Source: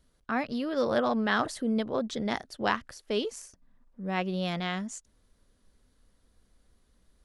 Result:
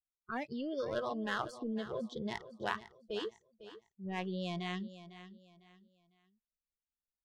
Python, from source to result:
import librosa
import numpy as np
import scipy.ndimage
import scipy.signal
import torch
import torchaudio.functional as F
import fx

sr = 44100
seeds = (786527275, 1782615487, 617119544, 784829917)

p1 = fx.lowpass(x, sr, hz=3800.0, slope=6)
p2 = fx.power_curve(p1, sr, exponent=1.4)
p3 = fx.env_lowpass(p2, sr, base_hz=1200.0, full_db=-30.0)
p4 = fx.over_compress(p3, sr, threshold_db=-40.0, ratio=-1.0)
p5 = p3 + (p4 * 10.0 ** (-1.0 / 20.0))
p6 = fx.noise_reduce_blind(p5, sr, reduce_db=24)
p7 = p6 + fx.echo_feedback(p6, sr, ms=502, feedback_pct=31, wet_db=-14.0, dry=0)
y = p7 * 10.0 ** (-5.5 / 20.0)